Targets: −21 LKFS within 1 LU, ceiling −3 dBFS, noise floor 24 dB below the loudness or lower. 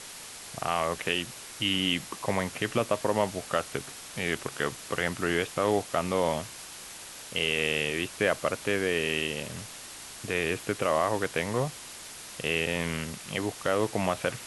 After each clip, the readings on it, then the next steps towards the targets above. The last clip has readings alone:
background noise floor −44 dBFS; target noise floor −54 dBFS; integrated loudness −29.5 LKFS; sample peak −10.0 dBFS; target loudness −21.0 LKFS
→ broadband denoise 10 dB, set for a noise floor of −44 dBFS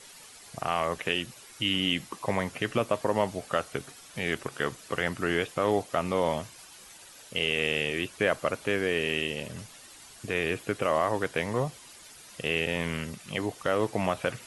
background noise floor −50 dBFS; target noise floor −54 dBFS
→ broadband denoise 6 dB, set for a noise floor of −50 dBFS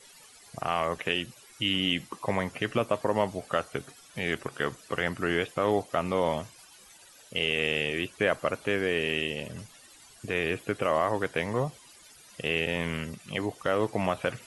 background noise floor −54 dBFS; integrated loudness −29.5 LKFS; sample peak −10.0 dBFS; target loudness −21.0 LKFS
→ level +8.5 dB
brickwall limiter −3 dBFS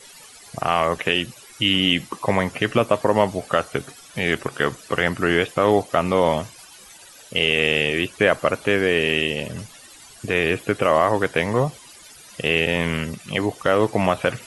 integrated loudness −21.0 LKFS; sample peak −3.0 dBFS; background noise floor −46 dBFS

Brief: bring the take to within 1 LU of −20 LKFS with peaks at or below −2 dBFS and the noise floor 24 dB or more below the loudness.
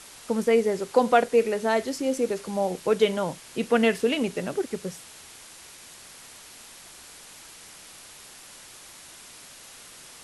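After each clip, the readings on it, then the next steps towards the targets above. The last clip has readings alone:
background noise floor −47 dBFS; target noise floor −49 dBFS; integrated loudness −25.0 LKFS; sample peak −5.5 dBFS; target loudness −20.0 LKFS
→ broadband denoise 6 dB, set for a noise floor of −47 dBFS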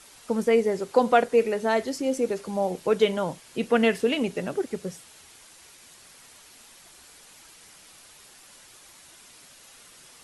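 background noise floor −52 dBFS; integrated loudness −25.0 LKFS; sample peak −5.5 dBFS; target loudness −20.0 LKFS
→ level +5 dB
brickwall limiter −2 dBFS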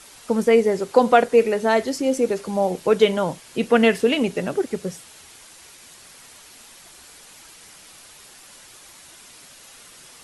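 integrated loudness −20.0 LKFS; sample peak −2.0 dBFS; background noise floor −47 dBFS

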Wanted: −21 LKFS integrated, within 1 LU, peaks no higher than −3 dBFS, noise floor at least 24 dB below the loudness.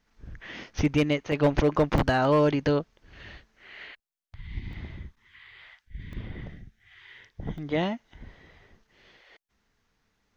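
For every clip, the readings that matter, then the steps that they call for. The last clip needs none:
share of clipped samples 0.4%; peaks flattened at −15.0 dBFS; number of dropouts 6; longest dropout 1.3 ms; integrated loudness −26.0 LKFS; sample peak −15.0 dBFS; target loudness −21.0 LKFS
→ clipped peaks rebuilt −15 dBFS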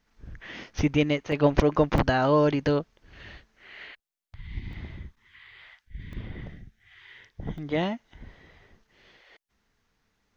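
share of clipped samples 0.0%; number of dropouts 6; longest dropout 1.3 ms
→ repair the gap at 0:00.79/0:01.32/0:01.98/0:04.73/0:06.13/0:07.58, 1.3 ms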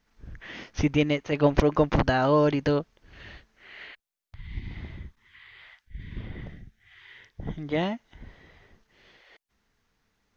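number of dropouts 0; integrated loudness −25.5 LKFS; sample peak −6.0 dBFS; target loudness −21.0 LKFS
→ level +4.5 dB
brickwall limiter −3 dBFS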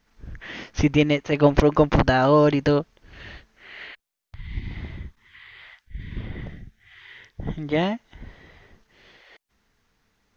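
integrated loudness −21.0 LKFS; sample peak −3.0 dBFS; background noise floor −72 dBFS

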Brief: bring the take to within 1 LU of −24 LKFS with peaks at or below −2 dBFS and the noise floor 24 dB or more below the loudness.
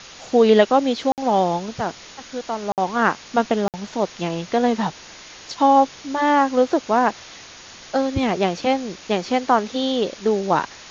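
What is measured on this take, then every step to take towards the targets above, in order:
number of dropouts 3; longest dropout 58 ms; background noise floor −42 dBFS; target noise floor −45 dBFS; integrated loudness −20.5 LKFS; sample peak −2.0 dBFS; target loudness −24.0 LKFS
→ repair the gap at 0:01.12/0:02.72/0:03.68, 58 ms
broadband denoise 6 dB, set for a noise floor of −42 dBFS
level −3.5 dB

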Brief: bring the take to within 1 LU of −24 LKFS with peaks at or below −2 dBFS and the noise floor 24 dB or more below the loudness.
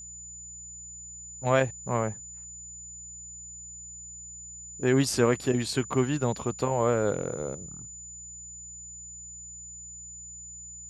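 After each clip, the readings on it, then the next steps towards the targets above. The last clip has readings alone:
mains hum 60 Hz; hum harmonics up to 180 Hz; level of the hum −52 dBFS; interfering tone 7,000 Hz; level of the tone −41 dBFS; integrated loudness −31.0 LKFS; sample peak −9.5 dBFS; target loudness −24.0 LKFS
→ hum removal 60 Hz, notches 3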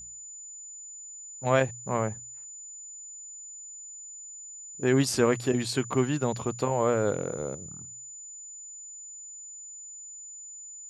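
mains hum none found; interfering tone 7,000 Hz; level of the tone −41 dBFS
→ notch filter 7,000 Hz, Q 30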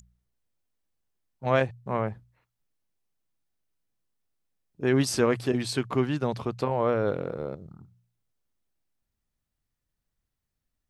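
interfering tone none found; integrated loudness −27.5 LKFS; sample peak −9.5 dBFS; target loudness −24.0 LKFS
→ level +3.5 dB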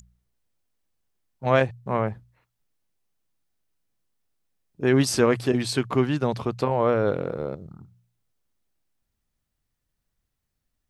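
integrated loudness −24.0 LKFS; sample peak −6.0 dBFS; background noise floor −80 dBFS

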